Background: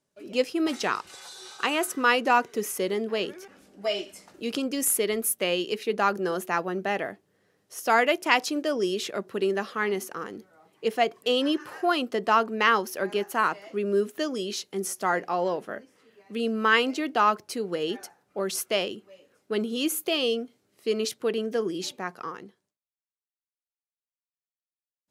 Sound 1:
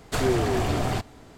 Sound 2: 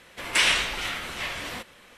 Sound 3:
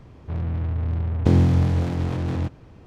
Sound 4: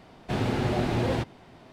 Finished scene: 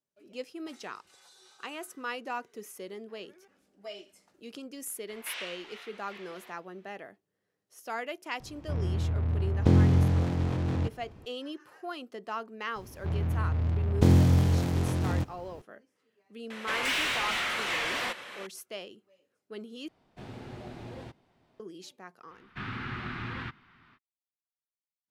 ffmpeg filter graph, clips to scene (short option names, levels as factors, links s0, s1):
-filter_complex "[2:a]asplit=2[s0][s1];[3:a]asplit=2[s2][s3];[4:a]asplit=2[s4][s5];[0:a]volume=0.188[s6];[s0]acrossover=split=400 5700:gain=0.0891 1 0.158[s7][s8][s9];[s7][s8][s9]amix=inputs=3:normalize=0[s10];[s3]aemphasis=mode=production:type=50fm[s11];[s1]asplit=2[s12][s13];[s13]highpass=f=720:p=1,volume=28.2,asoftclip=type=tanh:threshold=0.335[s14];[s12][s14]amix=inputs=2:normalize=0,lowpass=f=2900:p=1,volume=0.501[s15];[s5]firequalizer=gain_entry='entry(230,0);entry(590,-16);entry(1200,13);entry(7500,-13)':delay=0.05:min_phase=1[s16];[s6]asplit=2[s17][s18];[s17]atrim=end=19.884[s19];[s4]atrim=end=1.72,asetpts=PTS-STARTPTS,volume=0.141[s20];[s18]atrim=start=21.596[s21];[s10]atrim=end=1.97,asetpts=PTS-STARTPTS,volume=0.133,afade=t=in:d=0.004:c=hsin,afade=t=out:st=1.966:d=0.004:c=hsin,adelay=4910[s22];[s2]atrim=end=2.86,asetpts=PTS-STARTPTS,volume=0.631,afade=t=in:d=0.004:c=hsin,afade=t=out:st=2.856:d=0.004:c=hsin,adelay=8400[s23];[s11]atrim=end=2.86,asetpts=PTS-STARTPTS,volume=0.708,afade=t=in:d=0.004:c=hsin,afade=t=out:st=2.856:d=0.004:c=hsin,adelay=12760[s24];[s15]atrim=end=1.97,asetpts=PTS-STARTPTS,volume=0.266,afade=t=in:d=0.004:c=hsin,afade=t=out:st=1.966:d=0.004:c=hsin,adelay=16500[s25];[s16]atrim=end=1.72,asetpts=PTS-STARTPTS,volume=0.266,afade=t=in:d=0.05,afade=t=out:st=1.67:d=0.05,adelay=22270[s26];[s19][s20]acrossfade=d=0.004:c1=hsin:c2=hsin[s27];[s27][s21]acrossfade=d=0.004:c1=hsin:c2=hsin[s28];[s28][s22][s23][s24][s25][s26]amix=inputs=6:normalize=0"